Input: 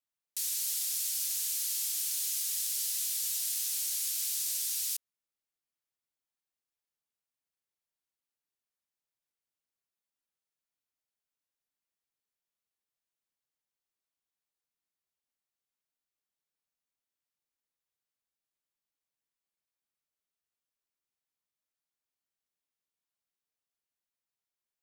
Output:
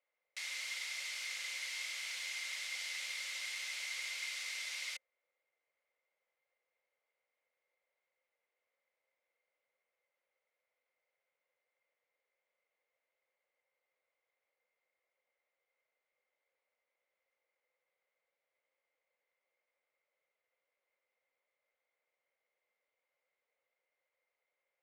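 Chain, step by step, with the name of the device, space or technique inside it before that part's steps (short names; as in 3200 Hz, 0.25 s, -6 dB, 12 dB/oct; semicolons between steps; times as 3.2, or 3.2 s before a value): tin-can telephone (BPF 620–2300 Hz; small resonant body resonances 520/2100 Hz, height 18 dB, ringing for 30 ms); gain +7.5 dB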